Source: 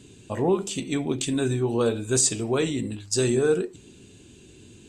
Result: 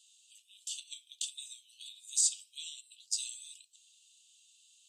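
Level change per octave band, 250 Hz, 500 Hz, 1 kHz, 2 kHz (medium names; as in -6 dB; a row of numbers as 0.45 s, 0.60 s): under -40 dB, under -40 dB, under -40 dB, -22.5 dB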